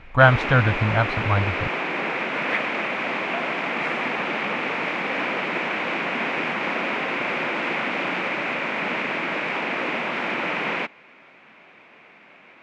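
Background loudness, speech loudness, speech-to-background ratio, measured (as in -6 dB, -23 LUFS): -25.0 LUFS, -20.5 LUFS, 4.5 dB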